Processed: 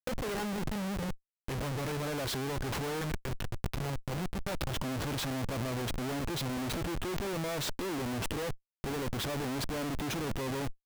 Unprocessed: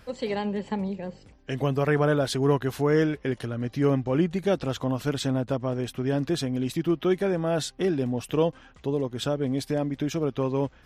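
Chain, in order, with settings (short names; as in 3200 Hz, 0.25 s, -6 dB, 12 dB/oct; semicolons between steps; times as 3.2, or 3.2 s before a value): 3.01–4.79 passive tone stack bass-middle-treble 10-0-10; Schmitt trigger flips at -38.5 dBFS; negative-ratio compressor -34 dBFS, ratio -1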